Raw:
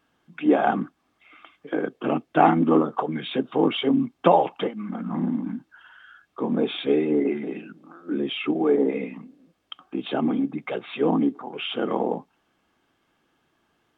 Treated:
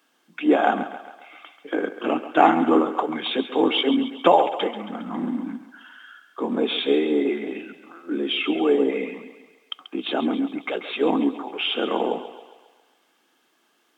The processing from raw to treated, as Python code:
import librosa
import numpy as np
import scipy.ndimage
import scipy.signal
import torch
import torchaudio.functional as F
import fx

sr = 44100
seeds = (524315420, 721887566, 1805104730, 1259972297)

y = scipy.signal.sosfilt(scipy.signal.butter(4, 230.0, 'highpass', fs=sr, output='sos'), x)
y = fx.high_shelf(y, sr, hz=3200.0, db=10.5)
y = fx.echo_thinned(y, sr, ms=136, feedback_pct=57, hz=340.0, wet_db=-11.5)
y = F.gain(torch.from_numpy(y), 1.0).numpy()